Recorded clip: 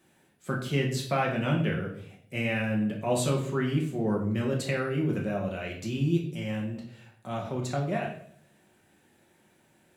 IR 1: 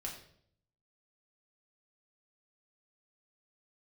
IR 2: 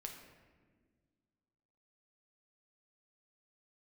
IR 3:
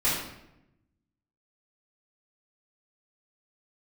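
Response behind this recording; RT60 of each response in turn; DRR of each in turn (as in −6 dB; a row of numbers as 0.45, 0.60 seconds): 1; 0.65, 1.6, 0.85 seconds; −2.0, 2.0, −11.5 decibels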